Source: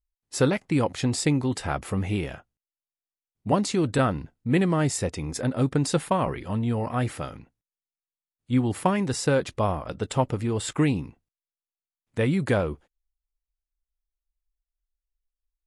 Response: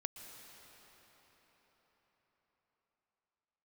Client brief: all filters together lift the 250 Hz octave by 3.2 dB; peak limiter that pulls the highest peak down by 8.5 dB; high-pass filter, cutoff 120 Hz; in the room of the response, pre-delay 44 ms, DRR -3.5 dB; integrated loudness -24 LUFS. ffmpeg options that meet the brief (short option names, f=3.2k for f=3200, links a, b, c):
-filter_complex "[0:a]highpass=120,equalizer=f=250:t=o:g=4.5,alimiter=limit=-15dB:level=0:latency=1,asplit=2[a][b];[1:a]atrim=start_sample=2205,adelay=44[c];[b][c]afir=irnorm=-1:irlink=0,volume=5.5dB[d];[a][d]amix=inputs=2:normalize=0,volume=-2dB"